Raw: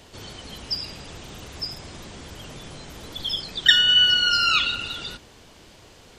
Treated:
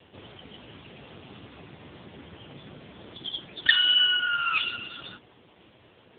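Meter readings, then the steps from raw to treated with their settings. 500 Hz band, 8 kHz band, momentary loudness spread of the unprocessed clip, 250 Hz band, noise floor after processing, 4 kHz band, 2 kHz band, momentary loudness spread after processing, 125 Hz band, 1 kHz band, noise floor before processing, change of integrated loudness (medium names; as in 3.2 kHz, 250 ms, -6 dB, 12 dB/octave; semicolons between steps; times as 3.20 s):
-5.5 dB, under -40 dB, 22 LU, -5.0 dB, -58 dBFS, -6.0 dB, -3.0 dB, 20 LU, -7.5 dB, -3.5 dB, -50 dBFS, -4.0 dB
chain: trim -1 dB; AMR-NB 5.9 kbps 8 kHz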